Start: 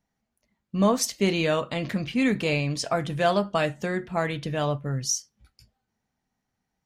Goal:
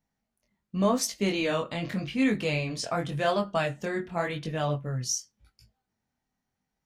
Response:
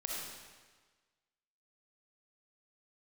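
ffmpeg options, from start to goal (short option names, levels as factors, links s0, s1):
-af "flanger=delay=18.5:depth=6.5:speed=0.88"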